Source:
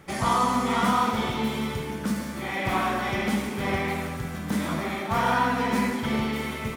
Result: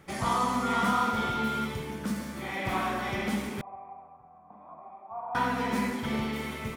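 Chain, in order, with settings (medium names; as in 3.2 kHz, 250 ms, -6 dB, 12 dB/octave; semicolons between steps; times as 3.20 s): 0.62–1.64 s: whistle 1.4 kHz -26 dBFS; 3.61–5.35 s: cascade formant filter a; trim -4.5 dB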